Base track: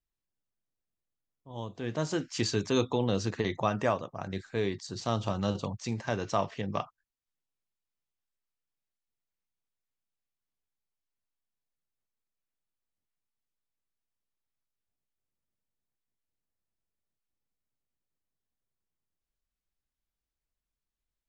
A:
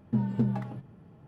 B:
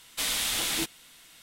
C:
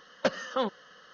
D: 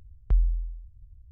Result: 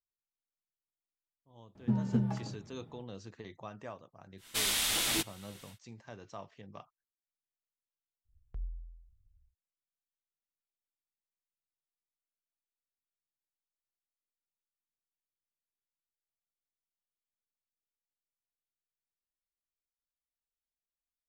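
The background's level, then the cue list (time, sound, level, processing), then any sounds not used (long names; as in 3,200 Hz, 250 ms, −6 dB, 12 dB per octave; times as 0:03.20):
base track −17 dB
0:01.75: mix in A −3 dB
0:04.37: mix in B −2 dB, fades 0.10 s
0:08.24: mix in D −17 dB, fades 0.10 s + mains-hum notches 50/100/150/200/250/300/350/400 Hz
not used: C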